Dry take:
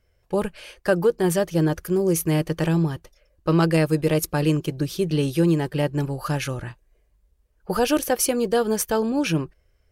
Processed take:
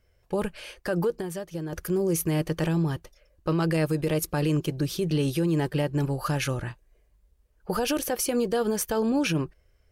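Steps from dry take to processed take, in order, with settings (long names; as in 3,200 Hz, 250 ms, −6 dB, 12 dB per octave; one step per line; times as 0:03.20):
0:01.12–0:01.73: downward compressor 5 to 1, threshold −32 dBFS, peak gain reduction 14 dB
brickwall limiter −17.5 dBFS, peak gain reduction 9.5 dB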